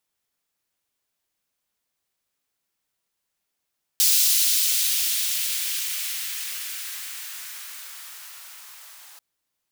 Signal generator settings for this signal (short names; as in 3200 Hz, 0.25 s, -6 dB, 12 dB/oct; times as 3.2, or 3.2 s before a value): swept filtered noise white, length 5.19 s highpass, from 4300 Hz, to 900 Hz, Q 1.1, exponential, gain ramp -29.5 dB